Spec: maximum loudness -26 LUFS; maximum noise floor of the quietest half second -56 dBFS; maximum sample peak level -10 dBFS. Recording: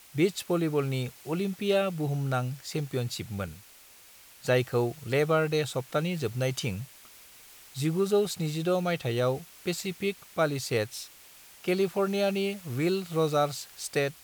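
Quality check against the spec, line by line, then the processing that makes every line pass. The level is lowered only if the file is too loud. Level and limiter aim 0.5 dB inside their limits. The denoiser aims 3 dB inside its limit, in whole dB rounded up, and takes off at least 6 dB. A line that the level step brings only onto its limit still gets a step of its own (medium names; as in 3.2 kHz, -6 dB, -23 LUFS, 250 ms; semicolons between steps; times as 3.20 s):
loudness -29.5 LUFS: pass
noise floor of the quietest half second -54 dBFS: fail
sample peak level -13.5 dBFS: pass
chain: noise reduction 6 dB, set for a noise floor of -54 dBFS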